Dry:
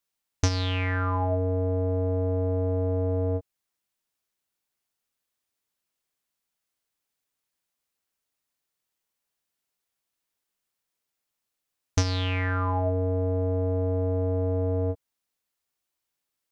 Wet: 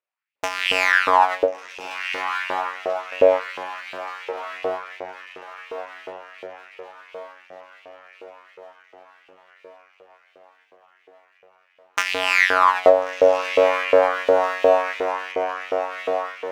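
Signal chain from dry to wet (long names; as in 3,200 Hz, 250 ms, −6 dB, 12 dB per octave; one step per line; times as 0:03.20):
adaptive Wiener filter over 9 samples
high shelf with overshoot 3,200 Hz −6.5 dB, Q 3
0:00.92–0:03.12: noise gate with hold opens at −18 dBFS
automatic gain control gain up to 14.5 dB
feedback delay with all-pass diffusion 1,417 ms, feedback 53%, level −8 dB
half-wave rectification
auto-filter high-pass saw up 2.8 Hz 440–2,800 Hz
convolution reverb, pre-delay 3 ms, DRR 18.5 dB
level +2 dB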